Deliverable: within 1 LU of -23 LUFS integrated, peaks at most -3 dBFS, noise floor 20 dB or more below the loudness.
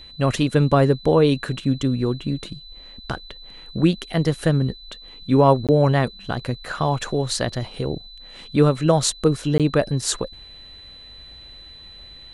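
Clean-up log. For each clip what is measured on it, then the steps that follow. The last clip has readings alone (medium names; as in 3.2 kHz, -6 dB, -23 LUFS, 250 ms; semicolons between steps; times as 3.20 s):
dropouts 2; longest dropout 17 ms; steady tone 4 kHz; tone level -41 dBFS; loudness -21.0 LUFS; peak level -3.0 dBFS; loudness target -23.0 LUFS
-> interpolate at 5.67/9.58 s, 17 ms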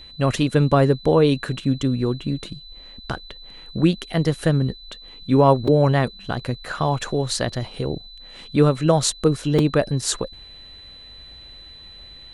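dropouts 0; steady tone 4 kHz; tone level -41 dBFS
-> band-stop 4 kHz, Q 30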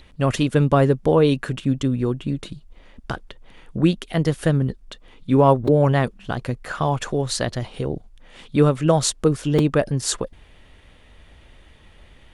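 steady tone not found; loudness -21.0 LUFS; peak level -3.0 dBFS; loudness target -23.0 LUFS
-> trim -2 dB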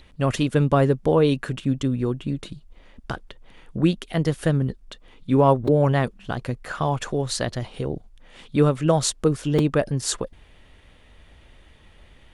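loudness -23.0 LUFS; peak level -5.0 dBFS; noise floor -52 dBFS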